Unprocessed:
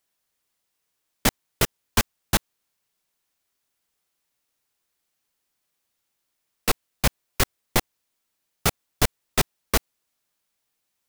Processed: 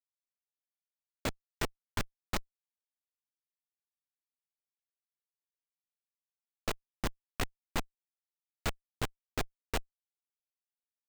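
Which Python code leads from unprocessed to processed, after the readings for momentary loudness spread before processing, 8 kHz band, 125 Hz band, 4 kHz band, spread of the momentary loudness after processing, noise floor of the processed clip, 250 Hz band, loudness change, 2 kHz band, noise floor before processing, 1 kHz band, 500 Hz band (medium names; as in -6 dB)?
2 LU, -17.5 dB, -12.5 dB, -14.0 dB, 2 LU, under -85 dBFS, -11.5 dB, -13.5 dB, -12.0 dB, -78 dBFS, -11.5 dB, -11.5 dB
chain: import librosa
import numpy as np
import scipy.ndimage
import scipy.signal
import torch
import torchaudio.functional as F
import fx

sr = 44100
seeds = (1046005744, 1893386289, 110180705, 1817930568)

y = fx.hpss(x, sr, part='percussive', gain_db=-15)
y = (np.kron(scipy.signal.resample_poly(y, 1, 4), np.eye(4)[0]) * 4)[:len(y)]
y = fx.schmitt(y, sr, flips_db=-31.5)
y = F.gain(torch.from_numpy(y), 10.5).numpy()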